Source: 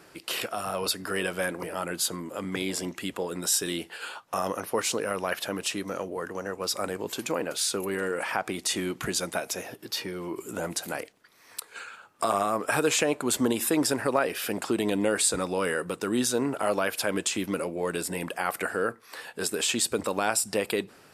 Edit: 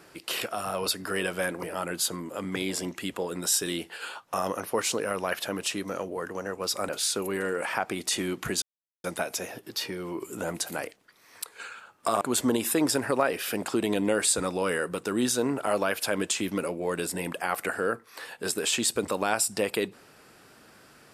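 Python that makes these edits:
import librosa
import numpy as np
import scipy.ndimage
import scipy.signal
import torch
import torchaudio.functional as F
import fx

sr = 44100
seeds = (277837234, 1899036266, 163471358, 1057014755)

y = fx.edit(x, sr, fx.cut(start_s=6.89, length_s=0.58),
    fx.insert_silence(at_s=9.2, length_s=0.42),
    fx.cut(start_s=12.37, length_s=0.8), tone=tone)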